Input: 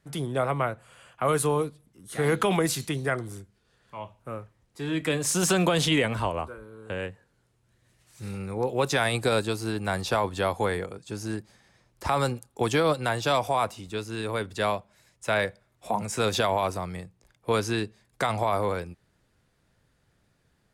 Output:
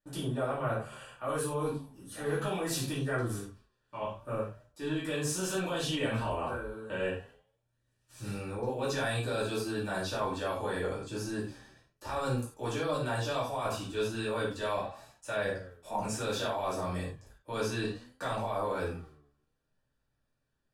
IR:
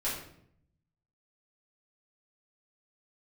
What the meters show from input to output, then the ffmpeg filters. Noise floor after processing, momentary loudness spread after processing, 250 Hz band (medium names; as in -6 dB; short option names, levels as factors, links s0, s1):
-79 dBFS, 9 LU, -6.0 dB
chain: -filter_complex "[0:a]asplit=2[s0][s1];[s1]alimiter=limit=0.0794:level=0:latency=1,volume=1[s2];[s0][s2]amix=inputs=2:normalize=0,agate=range=0.126:threshold=0.002:ratio=16:detection=peak,flanger=delay=9.6:depth=4.5:regen=89:speed=0.65:shape=triangular,asuperstop=centerf=2100:order=4:qfactor=6.7,areverse,acompressor=threshold=0.0224:ratio=6,areverse[s3];[1:a]atrim=start_sample=2205,afade=t=out:st=0.16:d=0.01,atrim=end_sample=7497[s4];[s3][s4]afir=irnorm=-1:irlink=0,volume=0.794"